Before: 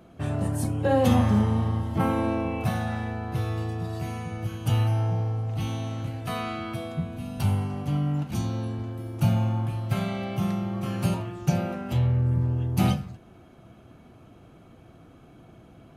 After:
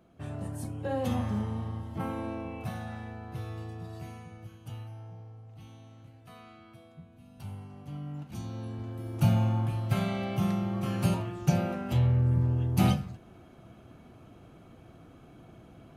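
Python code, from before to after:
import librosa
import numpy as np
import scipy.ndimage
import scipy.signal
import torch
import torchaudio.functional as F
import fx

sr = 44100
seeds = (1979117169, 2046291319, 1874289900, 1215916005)

y = fx.gain(x, sr, db=fx.line((4.03, -10.0), (4.88, -20.0), (7.1, -20.0), (8.41, -10.5), (9.16, -1.5)))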